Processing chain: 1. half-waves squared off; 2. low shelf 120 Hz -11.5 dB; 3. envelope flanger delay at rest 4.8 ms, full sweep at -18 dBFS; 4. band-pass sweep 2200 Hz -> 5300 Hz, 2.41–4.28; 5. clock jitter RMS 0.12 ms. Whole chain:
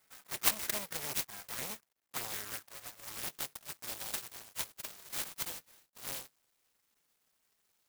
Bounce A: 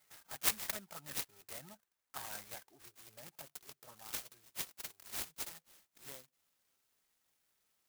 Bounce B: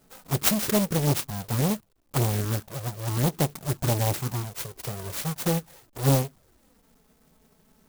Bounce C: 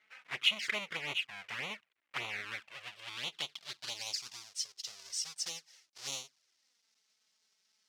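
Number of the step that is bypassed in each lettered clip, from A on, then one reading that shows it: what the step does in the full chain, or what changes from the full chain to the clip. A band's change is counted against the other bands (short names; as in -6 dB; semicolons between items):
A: 1, distortion -5 dB; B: 4, 125 Hz band +22.5 dB; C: 5, 4 kHz band +9.0 dB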